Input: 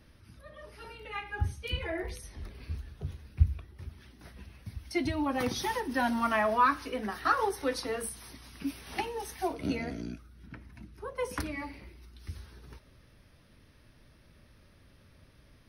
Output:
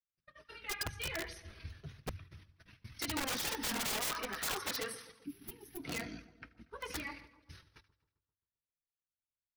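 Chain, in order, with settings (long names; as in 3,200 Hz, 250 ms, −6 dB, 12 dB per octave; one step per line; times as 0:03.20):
noise gate −47 dBFS, range −44 dB
flat-topped bell 2,700 Hz +8.5 dB 2.6 octaves
hum removal 85.03 Hz, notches 3
multi-voice chorus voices 4, 0.22 Hz, delay 10 ms, depth 4.1 ms
echo with a time of its own for lows and highs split 1,100 Hz, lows 217 ms, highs 129 ms, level −16 dB
wrap-around overflow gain 26 dB
gain on a spectral selection 0:08.61–0:09.57, 420–9,800 Hz −18 dB
time stretch by overlap-add 0.61×, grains 48 ms
level −3.5 dB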